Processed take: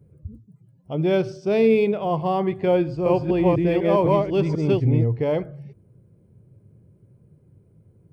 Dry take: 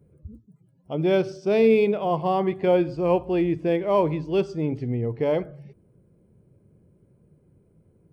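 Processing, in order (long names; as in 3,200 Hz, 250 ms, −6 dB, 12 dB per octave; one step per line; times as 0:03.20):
0:02.81–0:05.04: delay that plays each chunk backwards 249 ms, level 0 dB
parametric band 110 Hz +9.5 dB 0.81 octaves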